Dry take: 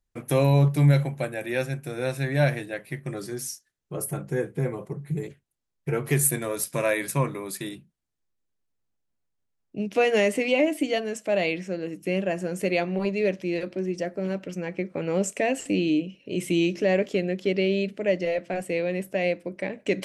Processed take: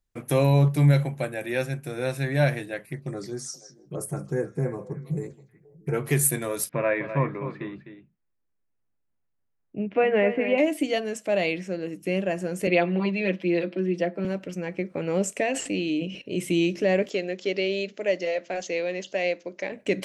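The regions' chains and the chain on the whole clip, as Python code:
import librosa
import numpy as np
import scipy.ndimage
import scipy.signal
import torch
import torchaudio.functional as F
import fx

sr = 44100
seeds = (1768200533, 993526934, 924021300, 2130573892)

y = fx.chain(x, sr, fx.env_phaser(low_hz=520.0, high_hz=3200.0, full_db=-28.5),
    fx.echo_stepped(ms=159, hz=4400.0, octaves=-1.4, feedback_pct=70, wet_db=-10), at=(2.86, 5.94))
y = fx.chain(y, sr, fx.lowpass(hz=2400.0, slope=24),
    fx.echo_single(ms=254, db=-10.5), at=(6.69, 10.58))
y = fx.chain(y, sr, fx.steep_highpass(hz=160.0, slope=36),
    fx.high_shelf_res(hz=4700.0, db=-10.5, q=1.5),
    fx.comb(ms=6.0, depth=0.69), at=(12.67, 14.25))
y = fx.chain(y, sr, fx.lowpass(hz=8200.0, slope=12),
    fx.low_shelf(hz=460.0, db=-5.5),
    fx.sustainer(db_per_s=80.0), at=(15.43, 16.22))
y = fx.chain(y, sr, fx.bass_treble(bass_db=-13, treble_db=6),
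    fx.resample_bad(factor=3, down='none', up='filtered'), at=(17.1, 19.72))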